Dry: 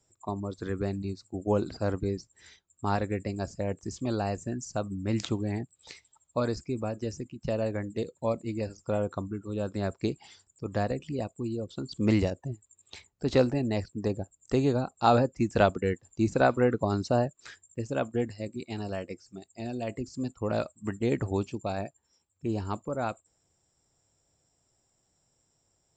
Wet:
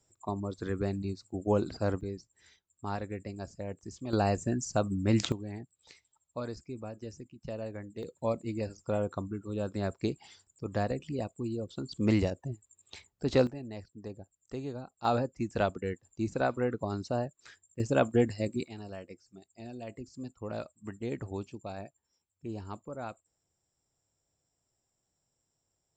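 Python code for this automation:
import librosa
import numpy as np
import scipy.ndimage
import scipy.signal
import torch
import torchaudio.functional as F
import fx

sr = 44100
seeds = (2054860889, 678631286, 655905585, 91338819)

y = fx.gain(x, sr, db=fx.steps((0.0, -1.0), (2.01, -7.5), (4.13, 3.0), (5.32, -9.0), (8.03, -2.0), (13.47, -13.0), (15.05, -6.5), (17.8, 4.0), (18.68, -8.5)))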